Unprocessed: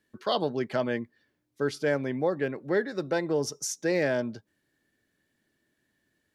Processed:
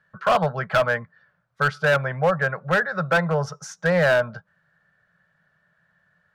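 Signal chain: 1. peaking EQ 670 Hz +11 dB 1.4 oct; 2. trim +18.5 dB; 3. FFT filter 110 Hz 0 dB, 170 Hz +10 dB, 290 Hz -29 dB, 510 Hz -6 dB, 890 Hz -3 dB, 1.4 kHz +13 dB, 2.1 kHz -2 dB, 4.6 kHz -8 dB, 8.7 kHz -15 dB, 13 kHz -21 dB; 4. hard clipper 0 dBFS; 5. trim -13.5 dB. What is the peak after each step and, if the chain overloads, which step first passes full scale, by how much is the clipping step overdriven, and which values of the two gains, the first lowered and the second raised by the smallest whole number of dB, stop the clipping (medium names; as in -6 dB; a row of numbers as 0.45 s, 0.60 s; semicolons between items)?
-7.5 dBFS, +11.0 dBFS, +9.5 dBFS, 0.0 dBFS, -13.5 dBFS; step 2, 9.5 dB; step 2 +8.5 dB, step 5 -3.5 dB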